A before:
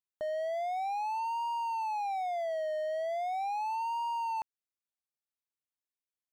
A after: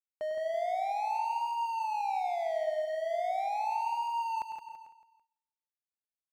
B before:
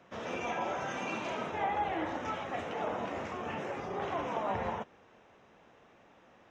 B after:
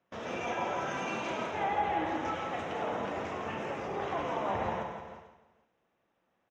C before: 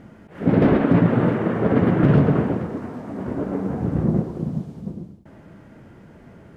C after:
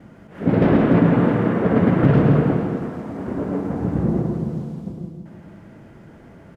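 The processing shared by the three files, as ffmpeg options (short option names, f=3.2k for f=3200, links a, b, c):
-filter_complex "[0:a]asplit=2[a][b];[b]aecho=0:1:166|332|498|664|830:0.355|0.16|0.0718|0.0323|0.0145[c];[a][c]amix=inputs=2:normalize=0,agate=range=-18dB:threshold=-52dB:ratio=16:detection=peak,asplit=2[d][e];[e]aecho=0:1:102|138|172|445:0.316|0.2|0.266|0.119[f];[d][f]amix=inputs=2:normalize=0"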